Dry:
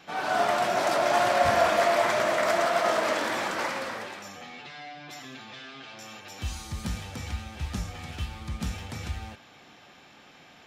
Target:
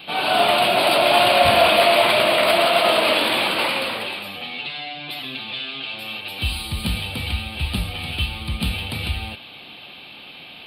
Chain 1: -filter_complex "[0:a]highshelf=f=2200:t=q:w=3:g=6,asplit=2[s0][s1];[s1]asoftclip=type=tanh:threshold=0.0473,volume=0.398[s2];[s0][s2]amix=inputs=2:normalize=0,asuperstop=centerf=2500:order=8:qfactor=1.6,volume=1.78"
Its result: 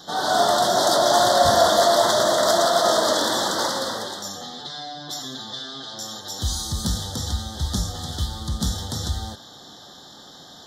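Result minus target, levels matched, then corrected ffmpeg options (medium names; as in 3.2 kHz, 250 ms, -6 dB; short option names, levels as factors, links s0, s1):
8 kHz band +11.0 dB; saturation: distortion +10 dB
-filter_complex "[0:a]highshelf=f=2200:t=q:w=3:g=6,asplit=2[s0][s1];[s1]asoftclip=type=tanh:threshold=0.141,volume=0.398[s2];[s0][s2]amix=inputs=2:normalize=0,asuperstop=centerf=6300:order=8:qfactor=1.6,volume=1.78"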